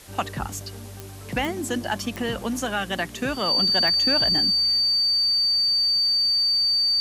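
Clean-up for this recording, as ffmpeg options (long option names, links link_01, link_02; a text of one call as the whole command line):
ffmpeg -i in.wav -af "adeclick=threshold=4,bandreject=frequency=4600:width=30,afwtdn=0.005" out.wav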